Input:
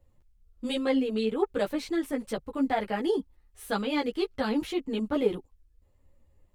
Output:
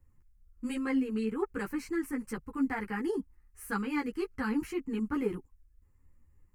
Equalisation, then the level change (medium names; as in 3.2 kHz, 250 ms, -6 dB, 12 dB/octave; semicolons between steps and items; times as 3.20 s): static phaser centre 1.5 kHz, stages 4; 0.0 dB